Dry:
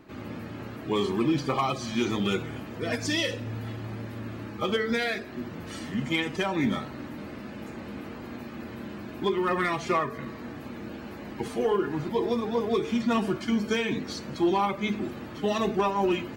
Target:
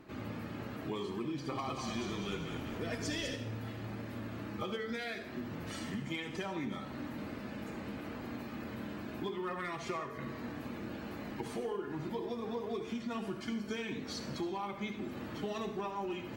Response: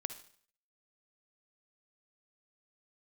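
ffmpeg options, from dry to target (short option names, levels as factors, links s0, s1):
-filter_complex "[0:a]acompressor=threshold=0.0224:ratio=6,asettb=1/sr,asplit=3[s0][s1][s2];[s0]atrim=end=1.304[s3];[s1]atrim=start=1.3:end=3.36,asetpts=PTS-STARTPTS,afade=t=in:d=0.004:c=qsin,afade=t=out:st=2.056:d=0.004:c=qsin,asplit=7[s4][s5][s6][s7][s8][s9][s10];[s5]adelay=200,afreqshift=-34,volume=0.501[s11];[s6]adelay=400,afreqshift=-68,volume=0.257[s12];[s7]adelay=600,afreqshift=-102,volume=0.13[s13];[s8]adelay=800,afreqshift=-136,volume=0.0668[s14];[s9]adelay=1000,afreqshift=-170,volume=0.0339[s15];[s10]adelay=1200,afreqshift=-204,volume=0.0174[s16];[s4][s11][s12][s13][s14][s15][s16]amix=inputs=7:normalize=0,atrim=end_sample=90846[s17];[s2]atrim=start=3.356[s18];[s3][s17]acrossfade=d=0.004:c1=hsin:c2=qsin[s19];[s19][s18]acrossfade=d=0.004:c1=qsin:c2=hsin[s20];[1:a]atrim=start_sample=2205,asetrate=37485,aresample=44100[s21];[s20][s21]afir=irnorm=-1:irlink=0,volume=0.75"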